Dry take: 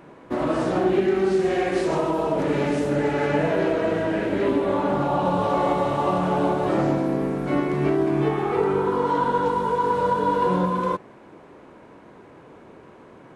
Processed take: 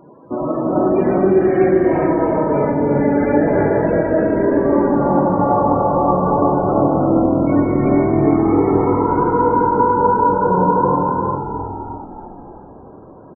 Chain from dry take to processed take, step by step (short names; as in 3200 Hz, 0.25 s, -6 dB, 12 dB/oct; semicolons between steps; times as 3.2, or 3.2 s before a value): loudest bins only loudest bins 32; frequency-shifting echo 0.323 s, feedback 57%, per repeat -42 Hz, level -7 dB; non-linear reverb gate 0.46 s rising, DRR 0 dB; gain +3 dB